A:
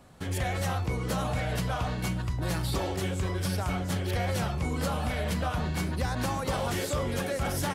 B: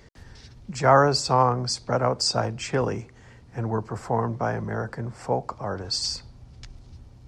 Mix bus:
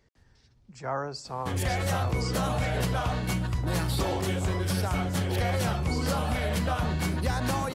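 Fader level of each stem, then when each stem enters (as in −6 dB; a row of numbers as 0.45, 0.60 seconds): +2.0, −15.0 decibels; 1.25, 0.00 seconds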